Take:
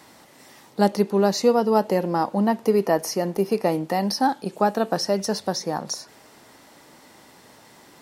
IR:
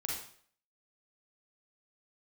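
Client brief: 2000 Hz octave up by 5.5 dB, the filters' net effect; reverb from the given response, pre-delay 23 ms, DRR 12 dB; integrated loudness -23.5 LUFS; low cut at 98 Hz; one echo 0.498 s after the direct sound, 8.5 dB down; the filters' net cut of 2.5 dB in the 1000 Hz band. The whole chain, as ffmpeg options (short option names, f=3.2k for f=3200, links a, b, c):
-filter_complex "[0:a]highpass=98,equalizer=f=1k:t=o:g=-5,equalizer=f=2k:t=o:g=8.5,aecho=1:1:498:0.376,asplit=2[a][b];[1:a]atrim=start_sample=2205,adelay=23[c];[b][c]afir=irnorm=-1:irlink=0,volume=-14.5dB[d];[a][d]amix=inputs=2:normalize=0,volume=-1dB"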